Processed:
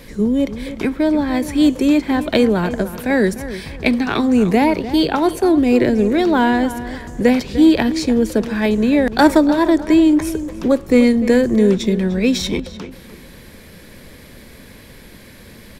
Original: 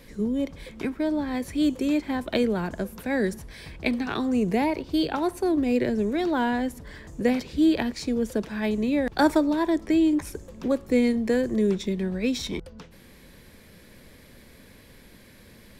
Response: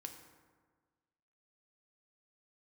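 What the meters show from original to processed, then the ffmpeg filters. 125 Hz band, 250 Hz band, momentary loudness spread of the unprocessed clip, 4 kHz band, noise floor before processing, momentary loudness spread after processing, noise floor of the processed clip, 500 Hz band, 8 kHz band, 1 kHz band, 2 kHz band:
+10.0 dB, +9.5 dB, 10 LU, +9.5 dB, -51 dBFS, 10 LU, -41 dBFS, +9.5 dB, +9.5 dB, +9.5 dB, +9.5 dB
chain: -filter_complex "[0:a]acontrast=88,asplit=2[a][b];[b]adelay=299,lowpass=f=3.1k:p=1,volume=-13dB,asplit=2[c][d];[d]adelay=299,lowpass=f=3.1k:p=1,volume=0.32,asplit=2[e][f];[f]adelay=299,lowpass=f=3.1k:p=1,volume=0.32[g];[c][e][g]amix=inputs=3:normalize=0[h];[a][h]amix=inputs=2:normalize=0,volume=2.5dB"

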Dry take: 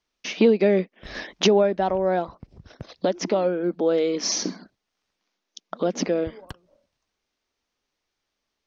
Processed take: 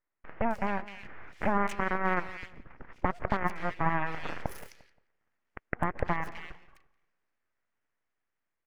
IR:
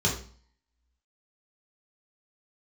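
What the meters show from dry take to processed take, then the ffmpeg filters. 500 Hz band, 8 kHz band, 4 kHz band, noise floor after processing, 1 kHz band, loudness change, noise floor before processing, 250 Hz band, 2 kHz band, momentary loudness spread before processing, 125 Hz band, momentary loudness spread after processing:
-15.5 dB, n/a, -20.5 dB, -84 dBFS, -1.0 dB, -9.5 dB, -81 dBFS, -11.0 dB, +1.0 dB, 15 LU, -3.5 dB, 16 LU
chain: -filter_complex "[0:a]acompressor=threshold=-29dB:ratio=2,aeval=exprs='0.237*(cos(1*acos(clip(val(0)/0.237,-1,1)))-cos(1*PI/2))+0.0531*(cos(7*acos(clip(val(0)/0.237,-1,1)))-cos(7*PI/2))':c=same,aeval=exprs='abs(val(0))':c=same,alimiter=limit=-18dB:level=0:latency=1:release=116,firequalizer=gain_entry='entry(860,0);entry(1900,5);entry(3800,-17)':delay=0.05:min_phase=1,asplit=2[a][b];[b]adelay=175,lowpass=f=2.3k:p=1,volume=-17dB,asplit=2[c][d];[d]adelay=175,lowpass=f=2.3k:p=1,volume=0.3,asplit=2[e][f];[f]adelay=175,lowpass=f=2.3k:p=1,volume=0.3[g];[c][e][g]amix=inputs=3:normalize=0[h];[a][h]amix=inputs=2:normalize=0,dynaudnorm=f=230:g=13:m=5dB,equalizer=f=5.3k:t=o:w=1.5:g=3,acrossover=split=2500[i][j];[j]adelay=260[k];[i][k]amix=inputs=2:normalize=0"

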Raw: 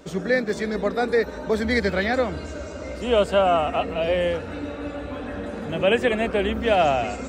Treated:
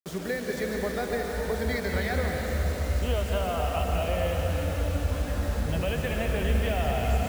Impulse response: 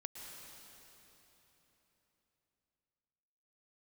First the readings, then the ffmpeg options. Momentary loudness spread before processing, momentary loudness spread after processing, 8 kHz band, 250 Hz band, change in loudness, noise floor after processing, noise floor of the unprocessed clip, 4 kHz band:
13 LU, 3 LU, n/a, -6.0 dB, -5.5 dB, -34 dBFS, -35 dBFS, -6.0 dB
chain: -filter_complex "[0:a]acompressor=threshold=-22dB:ratio=12[a];[1:a]atrim=start_sample=2205,asetrate=37485,aresample=44100[b];[a][b]afir=irnorm=-1:irlink=0,acrusher=bits=6:mix=0:aa=0.000001,asubboost=boost=8.5:cutoff=100"

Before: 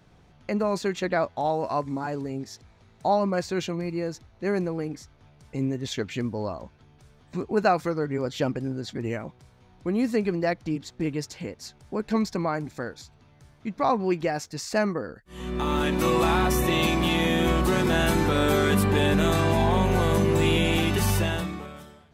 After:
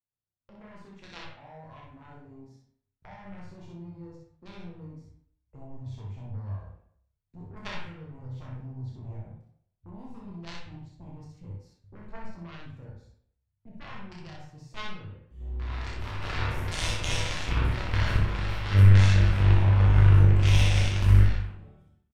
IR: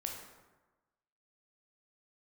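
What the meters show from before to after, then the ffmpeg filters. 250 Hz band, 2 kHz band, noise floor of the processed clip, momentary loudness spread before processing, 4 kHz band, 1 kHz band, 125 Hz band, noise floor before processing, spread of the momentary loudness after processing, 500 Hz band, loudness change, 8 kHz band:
-13.0 dB, -6.5 dB, -81 dBFS, 14 LU, -5.5 dB, -12.5 dB, +5.5 dB, -57 dBFS, 23 LU, -17.0 dB, +2.5 dB, -7.0 dB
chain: -filter_complex "[0:a]afwtdn=0.0224,agate=range=-17dB:threshold=-56dB:ratio=16:detection=peak,acrossover=split=210|1300[a][b][c];[b]acompressor=threshold=-37dB:ratio=12[d];[c]highshelf=f=10k:g=-6.5[e];[a][d][e]amix=inputs=3:normalize=0,aeval=exprs='0.188*(cos(1*acos(clip(val(0)/0.188,-1,1)))-cos(1*PI/2))+0.015*(cos(2*acos(clip(val(0)/0.188,-1,1)))-cos(2*PI/2))+0.075*(cos(3*acos(clip(val(0)/0.188,-1,1)))-cos(3*PI/2))':c=same,dynaudnorm=f=590:g=9:m=3dB,asubboost=boost=6:cutoff=97,asplit=2[f][g];[g]asoftclip=type=tanh:threshold=-17.5dB,volume=-6.5dB[h];[f][h]amix=inputs=2:normalize=0,aecho=1:1:30|62:0.596|0.708[i];[1:a]atrim=start_sample=2205,asetrate=83790,aresample=44100[j];[i][j]afir=irnorm=-1:irlink=0,volume=3dB"

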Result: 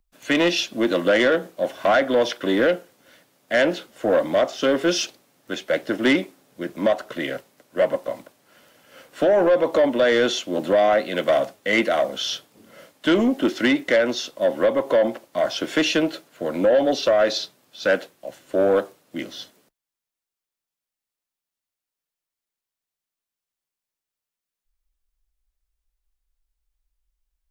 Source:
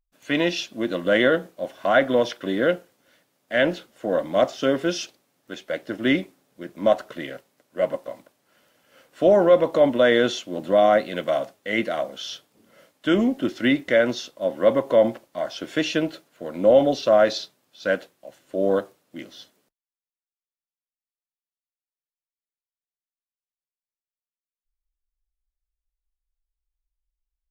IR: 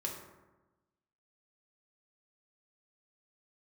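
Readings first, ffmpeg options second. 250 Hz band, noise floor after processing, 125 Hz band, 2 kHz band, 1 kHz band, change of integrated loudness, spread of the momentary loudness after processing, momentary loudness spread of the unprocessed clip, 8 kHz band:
+1.5 dB, under -85 dBFS, -2.0 dB, +2.5 dB, +0.5 dB, +1.0 dB, 14 LU, 17 LU, n/a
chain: -filter_complex "[0:a]acrossover=split=210|760[a][b][c];[a]acompressor=threshold=-46dB:ratio=6[d];[d][b][c]amix=inputs=3:normalize=0,alimiter=limit=-13.5dB:level=0:latency=1:release=375,asoftclip=type=tanh:threshold=-18.5dB,volume=7.5dB"

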